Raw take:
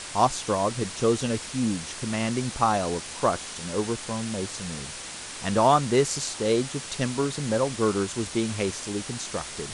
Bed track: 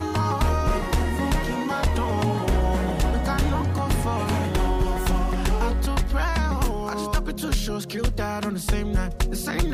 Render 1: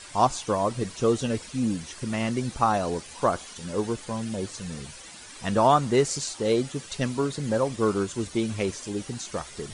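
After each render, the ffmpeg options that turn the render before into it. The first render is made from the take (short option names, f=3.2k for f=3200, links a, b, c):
-af "afftdn=nr=11:nf=-38"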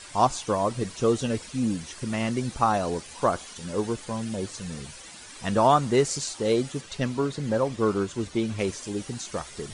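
-filter_complex "[0:a]asettb=1/sr,asplit=3[a][b][c];[a]atrim=end=6.814[d];[b]atrim=start=6.81:end=8.59,asetpts=PTS-STARTPTS,afade=t=in:d=0.004:c=qsin,afade=t=out:st=1.776:d=0.004:c=qsin,highshelf=f=8.4k:g=-11.5[e];[c]atrim=start=8.586[f];[d][e]acrossfade=d=0.004:c1=hsin:c2=qsin[g];[g][f]acrossfade=d=0.004:c1=qsin:c2=hsin"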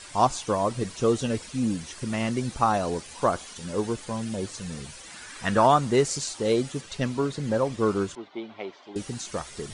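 -filter_complex "[0:a]asettb=1/sr,asplit=3[a][b][c];[a]atrim=end=5.104[d];[b]atrim=start=5.1:end=5.66,asetpts=PTS-STARTPTS,afade=t=in:d=0.004:c=qsin,afade=t=out:st=0.556:d=0.004:c=qsin,equalizer=f=1.6k:t=o:w=1:g=8[e];[c]atrim=start=5.656[f];[d][e]acrossfade=d=0.004:c1=hsin:c2=qsin[g];[g][f]acrossfade=d=0.004:c1=qsin:c2=hsin,asettb=1/sr,asplit=3[h][i][j];[h]atrim=end=8.154[k];[i]atrim=start=8.15:end=8.96,asetpts=PTS-STARTPTS,afade=t=in:d=0.004:c=qsin,afade=t=out:st=0.806:d=0.004:c=qsin,highpass=490,equalizer=f=490:t=q:w=4:g=-9,equalizer=f=740:t=q:w=4:g=5,equalizer=f=1.2k:t=q:w=4:g=-3,equalizer=f=1.7k:t=q:w=4:g=-9,equalizer=f=2.6k:t=q:w=4:g=-10,lowpass=f=3.1k:w=0.5412,lowpass=f=3.1k:w=1.3066[l];[j]atrim=start=8.956[m];[k][l]acrossfade=d=0.004:c1=hsin:c2=qsin[n];[n][m]acrossfade=d=0.004:c1=qsin:c2=hsin"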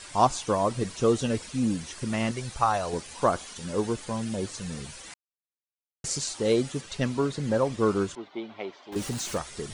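-filter_complex "[0:a]asettb=1/sr,asplit=3[a][b][c];[a]atrim=end=2.314[d];[b]atrim=start=2.31:end=2.93,asetpts=PTS-STARTPTS,afade=t=in:d=0.004:c=qsin,afade=t=out:st=0.616:d=0.004:c=qsin,equalizer=f=250:t=o:w=1.2:g=-13[e];[c]atrim=start=2.926[f];[d][e]acrossfade=d=0.004:c1=hsin:c2=qsin[g];[g][f]acrossfade=d=0.004:c1=qsin:c2=hsin,asettb=1/sr,asplit=3[h][i][j];[h]atrim=end=8.924[k];[i]atrim=start=8.92:end=9.38,asetpts=PTS-STARTPTS,afade=t=in:d=0.004:c=qsin,afade=t=out:st=0.456:d=0.004:c=qsin,aeval=exprs='val(0)+0.5*0.0168*sgn(val(0))':c=same[l];[j]atrim=start=9.376[m];[k][l]acrossfade=d=0.004:c1=hsin:c2=qsin[n];[n][m]acrossfade=d=0.004:c1=qsin:c2=hsin,asplit=3[o][p][q];[o]atrim=end=5.14,asetpts=PTS-STARTPTS,afade=t=out:st=5.136:d=0.004:c=hsin[r];[p]atrim=start=5.14:end=6.04,asetpts=PTS-STARTPTS,volume=0[s];[q]atrim=start=6.04,asetpts=PTS-STARTPTS,afade=t=in:d=0.004:c=hsin[t];[r][s][t]concat=n=3:v=0:a=1"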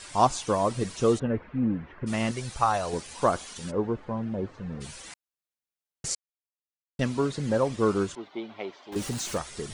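-filter_complex "[0:a]asplit=3[a][b][c];[a]afade=t=out:st=1.18:d=0.02[d];[b]lowpass=f=1.9k:w=0.5412,lowpass=f=1.9k:w=1.3066,afade=t=in:st=1.18:d=0.02,afade=t=out:st=2.06:d=0.02[e];[c]afade=t=in:st=2.06:d=0.02[f];[d][e][f]amix=inputs=3:normalize=0,asplit=3[g][h][i];[g]afade=t=out:st=3.7:d=0.02[j];[h]lowpass=1.4k,afade=t=in:st=3.7:d=0.02,afade=t=out:st=4.8:d=0.02[k];[i]afade=t=in:st=4.8:d=0.02[l];[j][k][l]amix=inputs=3:normalize=0,asplit=3[m][n][o];[m]atrim=end=6.15,asetpts=PTS-STARTPTS,afade=t=out:st=6.146:d=0.004:c=hsin[p];[n]atrim=start=6.15:end=6.99,asetpts=PTS-STARTPTS,volume=0[q];[o]atrim=start=6.99,asetpts=PTS-STARTPTS,afade=t=in:d=0.004:c=hsin[r];[p][q][r]concat=n=3:v=0:a=1"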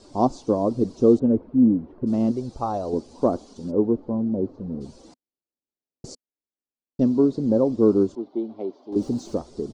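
-af "firequalizer=gain_entry='entry(160,0);entry(250,12);entry(470,5);entry(1800,-23);entry(2800,-19);entry(4500,-7);entry(10000,-22)':delay=0.05:min_phase=1"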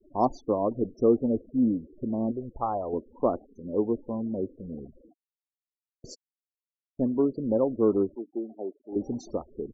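-af "afftfilt=real='re*gte(hypot(re,im),0.0141)':imag='im*gte(hypot(re,im),0.0141)':win_size=1024:overlap=0.75,equalizer=f=160:w=0.38:g=-8"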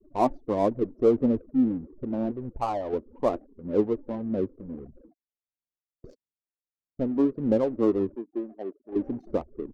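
-af "aphaser=in_gain=1:out_gain=1:delay=3.6:decay=0.38:speed=1.6:type=sinusoidal,adynamicsmooth=sensitivity=7.5:basefreq=650"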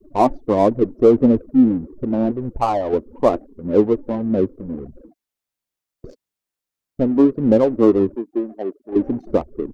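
-af "volume=9.5dB,alimiter=limit=-3dB:level=0:latency=1"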